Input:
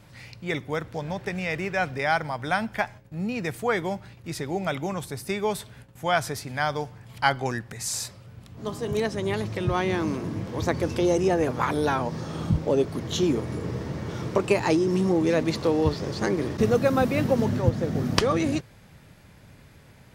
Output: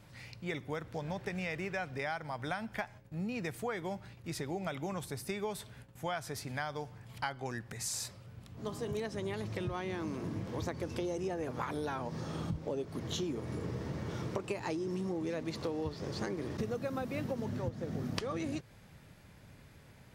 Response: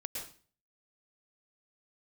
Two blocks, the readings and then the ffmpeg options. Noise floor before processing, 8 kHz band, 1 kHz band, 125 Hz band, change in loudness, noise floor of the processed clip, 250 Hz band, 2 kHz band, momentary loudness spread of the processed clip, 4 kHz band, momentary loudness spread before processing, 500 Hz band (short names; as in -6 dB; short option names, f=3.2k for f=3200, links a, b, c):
-52 dBFS, -8.5 dB, -13.0 dB, -11.0 dB, -12.0 dB, -57 dBFS, -12.0 dB, -12.0 dB, 7 LU, -11.0 dB, 10 LU, -13.0 dB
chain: -af "acompressor=threshold=-28dB:ratio=6,volume=-5.5dB"